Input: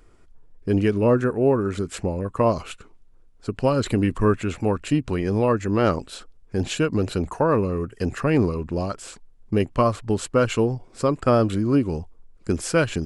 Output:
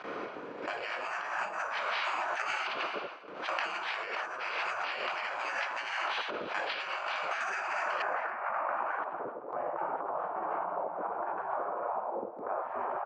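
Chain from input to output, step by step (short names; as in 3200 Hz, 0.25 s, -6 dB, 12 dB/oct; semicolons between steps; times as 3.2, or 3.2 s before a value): per-bin compression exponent 0.6; careless resampling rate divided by 6×, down filtered, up hold; shoebox room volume 390 m³, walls mixed, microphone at 2 m; dynamic EQ 600 Hz, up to -5 dB, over -27 dBFS, Q 4.9; spectral gate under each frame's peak -20 dB weak; LPF 3700 Hz 24 dB/oct, from 8.02 s 1600 Hz, from 9.04 s 1000 Hz; gate with hold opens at -32 dBFS; echo 0.28 s -16 dB; negative-ratio compressor -32 dBFS, ratio -1; HPF 430 Hz 12 dB/oct; backwards sustainer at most 83 dB/s; gain -2 dB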